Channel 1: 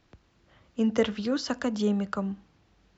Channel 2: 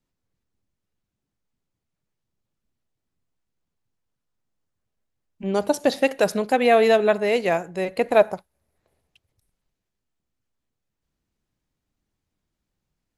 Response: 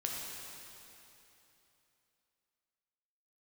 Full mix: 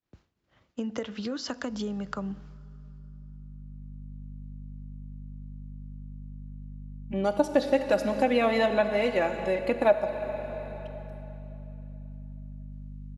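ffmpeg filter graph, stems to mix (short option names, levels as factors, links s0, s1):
-filter_complex "[0:a]agate=range=0.0224:threshold=0.00251:ratio=3:detection=peak,acompressor=threshold=0.0355:ratio=5,volume=1.19,asplit=3[s0][s1][s2];[s1]volume=0.0708[s3];[1:a]aecho=1:1:3.5:0.68,aeval=exprs='val(0)+0.0112*(sin(2*PI*50*n/s)+sin(2*PI*2*50*n/s)/2+sin(2*PI*3*50*n/s)/3+sin(2*PI*4*50*n/s)/4+sin(2*PI*5*50*n/s)/5)':c=same,highshelf=f=5300:g=-11.5,adelay=1700,volume=0.841,asplit=2[s4][s5];[s5]volume=0.473[s6];[s2]apad=whole_len=656111[s7];[s4][s7]sidechaincompress=threshold=0.00447:ratio=8:attack=16:release=1340[s8];[2:a]atrim=start_sample=2205[s9];[s3][s6]amix=inputs=2:normalize=0[s10];[s10][s9]afir=irnorm=-1:irlink=0[s11];[s0][s8][s11]amix=inputs=3:normalize=0,lowshelf=f=68:g=-5.5,acompressor=threshold=0.0224:ratio=1.5"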